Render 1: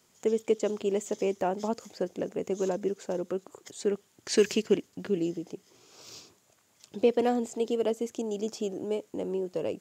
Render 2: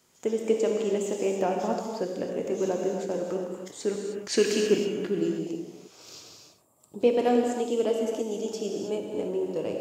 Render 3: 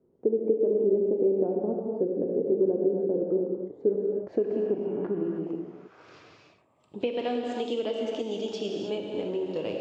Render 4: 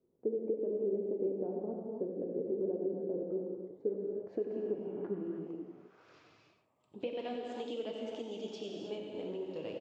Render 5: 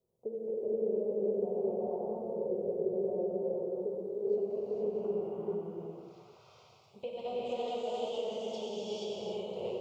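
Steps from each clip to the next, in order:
gain on a spectral selection 0:06.35–0:07.01, 1,300–7,200 Hz −17 dB; reverb whose tail is shaped and stops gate 340 ms flat, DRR 0.5 dB
downward compressor 6 to 1, threshold −26 dBFS, peak gain reduction 10 dB; low-pass filter sweep 410 Hz → 3,600 Hz, 0:03.69–0:07.31
flanger 1.8 Hz, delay 1.4 ms, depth 8 ms, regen +76%; on a send: single-tap delay 92 ms −10 dB; on the sum: level −5.5 dB
phaser with its sweep stopped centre 710 Hz, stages 4; reverb whose tail is shaped and stops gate 500 ms rising, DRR −6.5 dB; level +1 dB

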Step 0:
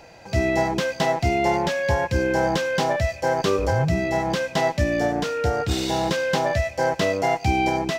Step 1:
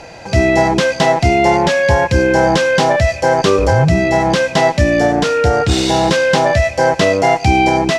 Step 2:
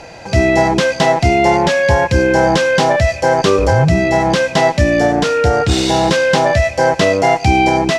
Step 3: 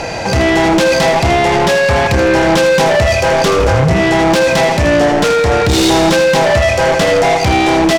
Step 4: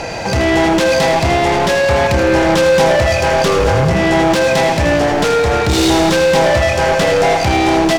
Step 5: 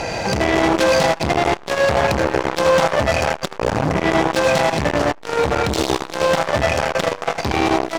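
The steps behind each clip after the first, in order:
low-pass filter 11,000 Hz 24 dB per octave; in parallel at −1 dB: brickwall limiter −20.5 dBFS, peak gain reduction 10.5 dB; on the sum: level +6.5 dB
no processing that can be heard
in parallel at 0 dB: compressor whose output falls as the input rises −19 dBFS, ratio −1; on the sum: soft clipping −13.5 dBFS, distortion −8 dB; repeating echo 80 ms, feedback 51%, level −9.5 dB; level +4.5 dB
feedback echo at a low word length 105 ms, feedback 80%, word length 7 bits, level −12.5 dB; level −2.5 dB
saturating transformer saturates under 720 Hz

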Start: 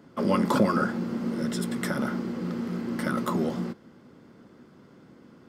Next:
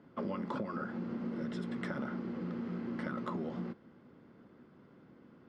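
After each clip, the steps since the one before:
low-pass filter 3,100 Hz 12 dB per octave
downward compressor 12 to 1, threshold −27 dBFS, peak gain reduction 12 dB
level −6.5 dB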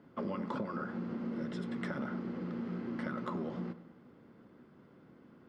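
tape delay 98 ms, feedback 58%, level −13 dB, low-pass 2,400 Hz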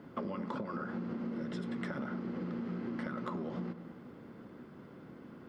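downward compressor, threshold −43 dBFS, peak gain reduction 10.5 dB
level +7.5 dB

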